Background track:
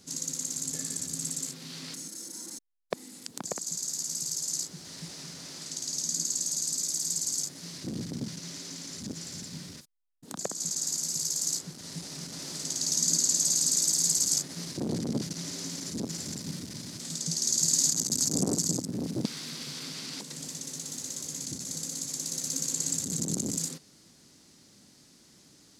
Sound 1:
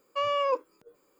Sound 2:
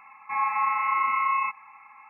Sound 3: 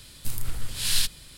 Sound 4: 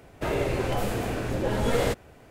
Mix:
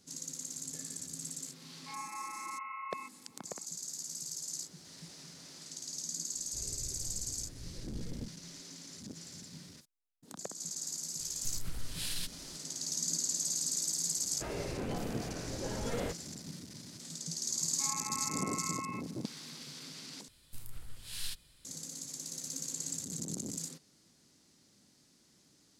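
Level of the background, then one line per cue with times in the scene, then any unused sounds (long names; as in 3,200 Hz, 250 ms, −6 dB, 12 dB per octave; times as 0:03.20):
background track −8.5 dB
0:01.57: mix in 2 −18 dB
0:06.32: mix in 4 −6 dB + guitar amp tone stack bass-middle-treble 10-0-1
0:11.20: mix in 3 −7.5 dB + brickwall limiter −19.5 dBFS
0:14.19: mix in 4 −12.5 dB
0:17.50: mix in 2 −17 dB
0:20.28: overwrite with 3 −16 dB
not used: 1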